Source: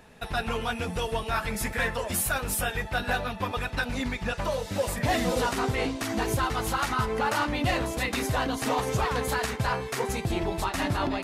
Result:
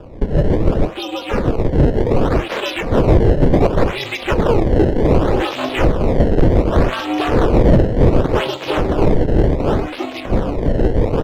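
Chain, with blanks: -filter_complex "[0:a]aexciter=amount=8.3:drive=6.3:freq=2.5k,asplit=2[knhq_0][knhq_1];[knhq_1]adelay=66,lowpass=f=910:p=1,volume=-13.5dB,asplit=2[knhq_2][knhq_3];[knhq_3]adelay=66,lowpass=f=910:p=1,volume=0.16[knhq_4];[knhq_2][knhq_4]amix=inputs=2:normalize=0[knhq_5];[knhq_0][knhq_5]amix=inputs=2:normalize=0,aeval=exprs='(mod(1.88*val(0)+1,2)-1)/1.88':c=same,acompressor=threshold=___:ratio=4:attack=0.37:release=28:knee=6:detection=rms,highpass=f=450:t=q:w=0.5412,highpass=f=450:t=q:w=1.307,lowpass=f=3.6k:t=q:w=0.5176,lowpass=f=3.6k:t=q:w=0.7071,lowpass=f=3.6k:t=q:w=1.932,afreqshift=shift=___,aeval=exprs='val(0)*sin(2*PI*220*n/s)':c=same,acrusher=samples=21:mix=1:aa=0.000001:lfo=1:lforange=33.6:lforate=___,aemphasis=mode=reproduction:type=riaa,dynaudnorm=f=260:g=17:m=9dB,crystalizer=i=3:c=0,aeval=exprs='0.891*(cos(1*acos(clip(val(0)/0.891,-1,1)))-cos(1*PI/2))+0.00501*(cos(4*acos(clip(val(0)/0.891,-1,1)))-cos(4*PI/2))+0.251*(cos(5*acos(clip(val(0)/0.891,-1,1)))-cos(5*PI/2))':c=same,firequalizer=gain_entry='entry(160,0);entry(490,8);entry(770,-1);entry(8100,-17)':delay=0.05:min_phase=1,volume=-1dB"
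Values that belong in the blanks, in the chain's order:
-17dB, 85, 0.67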